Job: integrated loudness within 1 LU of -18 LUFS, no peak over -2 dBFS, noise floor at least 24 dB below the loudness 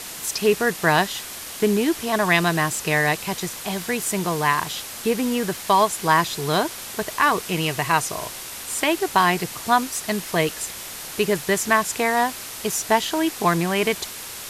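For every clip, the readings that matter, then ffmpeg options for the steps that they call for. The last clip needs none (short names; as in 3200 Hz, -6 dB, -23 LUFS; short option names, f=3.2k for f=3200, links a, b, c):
noise floor -35 dBFS; noise floor target -46 dBFS; loudness -22.0 LUFS; peak -4.5 dBFS; loudness target -18.0 LUFS
-> -af "afftdn=nr=11:nf=-35"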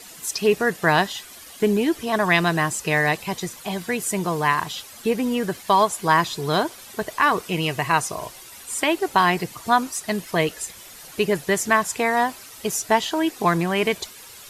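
noise floor -43 dBFS; noise floor target -46 dBFS
-> -af "afftdn=nr=6:nf=-43"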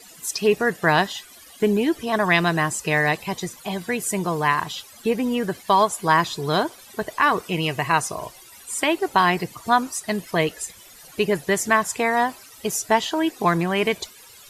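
noise floor -47 dBFS; loudness -22.0 LUFS; peak -4.5 dBFS; loudness target -18.0 LUFS
-> -af "volume=4dB,alimiter=limit=-2dB:level=0:latency=1"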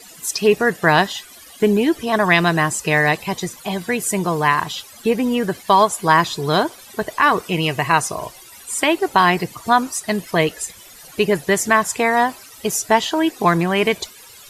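loudness -18.5 LUFS; peak -2.0 dBFS; noise floor -43 dBFS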